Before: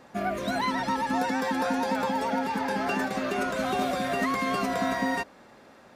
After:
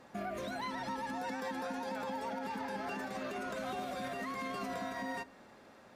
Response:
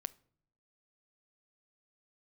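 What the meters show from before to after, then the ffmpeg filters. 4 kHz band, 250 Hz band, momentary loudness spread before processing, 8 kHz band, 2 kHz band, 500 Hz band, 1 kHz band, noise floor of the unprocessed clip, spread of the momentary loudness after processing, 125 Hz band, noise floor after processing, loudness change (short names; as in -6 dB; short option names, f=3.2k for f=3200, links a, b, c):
-11.5 dB, -12.5 dB, 2 LU, -11.5 dB, -11.5 dB, -10.5 dB, -11.5 dB, -53 dBFS, 3 LU, -11.5 dB, -58 dBFS, -11.5 dB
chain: -filter_complex "[0:a]alimiter=level_in=2dB:limit=-24dB:level=0:latency=1:release=121,volume=-2dB[a];[1:a]atrim=start_sample=2205,asetrate=32193,aresample=44100[b];[a][b]afir=irnorm=-1:irlink=0,volume=-4dB"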